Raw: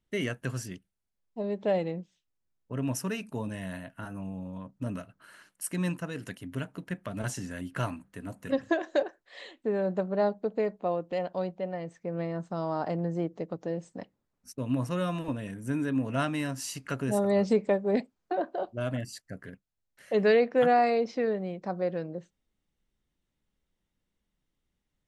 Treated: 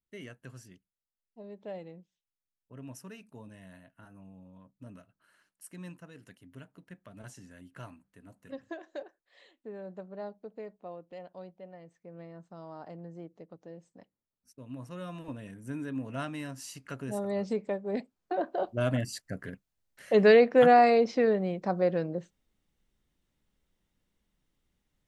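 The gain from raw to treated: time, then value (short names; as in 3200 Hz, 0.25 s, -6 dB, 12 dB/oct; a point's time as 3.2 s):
14.69 s -14 dB
15.37 s -7 dB
17.86 s -7 dB
18.77 s +3.5 dB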